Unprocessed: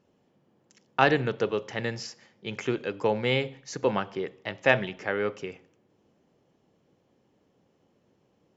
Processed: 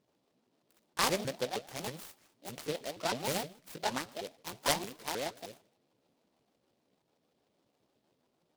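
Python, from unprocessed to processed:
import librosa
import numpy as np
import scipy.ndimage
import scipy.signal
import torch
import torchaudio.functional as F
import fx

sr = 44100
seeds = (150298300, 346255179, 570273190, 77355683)

y = fx.pitch_ramps(x, sr, semitones=11.0, every_ms=156)
y = fx.noise_mod_delay(y, sr, seeds[0], noise_hz=3200.0, depth_ms=0.1)
y = y * 10.0 ** (-7.5 / 20.0)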